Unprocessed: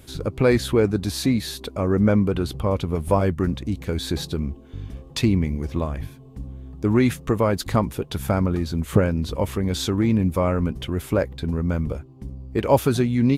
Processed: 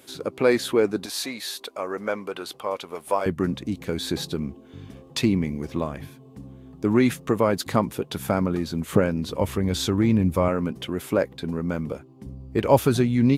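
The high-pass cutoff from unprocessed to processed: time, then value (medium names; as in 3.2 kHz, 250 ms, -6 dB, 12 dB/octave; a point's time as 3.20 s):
280 Hz
from 1.06 s 610 Hz
from 3.26 s 150 Hz
from 9.41 s 73 Hz
from 10.48 s 180 Hz
from 12.26 s 79 Hz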